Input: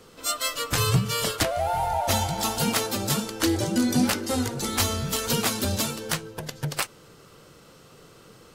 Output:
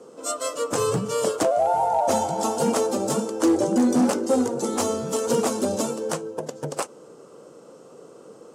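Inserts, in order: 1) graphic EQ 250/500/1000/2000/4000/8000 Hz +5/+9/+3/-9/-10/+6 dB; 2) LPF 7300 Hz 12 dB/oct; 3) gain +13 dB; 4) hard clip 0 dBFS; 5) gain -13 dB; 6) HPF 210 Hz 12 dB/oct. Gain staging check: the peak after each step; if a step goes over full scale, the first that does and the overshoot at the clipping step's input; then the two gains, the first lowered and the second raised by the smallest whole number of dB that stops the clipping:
-6.0, -6.5, +6.5, 0.0, -13.0, -9.0 dBFS; step 3, 6.5 dB; step 3 +6 dB, step 5 -6 dB

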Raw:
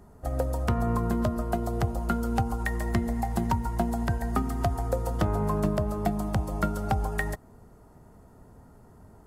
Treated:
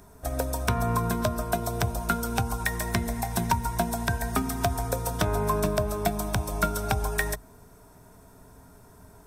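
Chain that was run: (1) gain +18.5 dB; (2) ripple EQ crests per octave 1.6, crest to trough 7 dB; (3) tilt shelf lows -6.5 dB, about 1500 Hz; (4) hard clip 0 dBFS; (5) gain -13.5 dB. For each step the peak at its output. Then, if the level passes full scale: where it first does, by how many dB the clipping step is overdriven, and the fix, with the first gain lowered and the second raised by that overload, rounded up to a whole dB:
+4.5, +5.5, +6.5, 0.0, -13.5 dBFS; step 1, 6.5 dB; step 1 +11.5 dB, step 5 -6.5 dB

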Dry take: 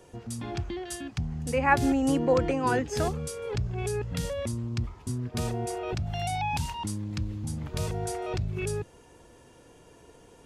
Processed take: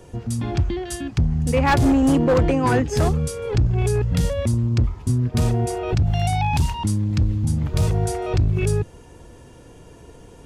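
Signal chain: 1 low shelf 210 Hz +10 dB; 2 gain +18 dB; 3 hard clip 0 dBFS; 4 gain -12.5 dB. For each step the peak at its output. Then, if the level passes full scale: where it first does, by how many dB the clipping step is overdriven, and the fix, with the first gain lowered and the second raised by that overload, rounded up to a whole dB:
-8.5, +9.5, 0.0, -12.5 dBFS; step 2, 9.5 dB; step 2 +8 dB, step 4 -2.5 dB

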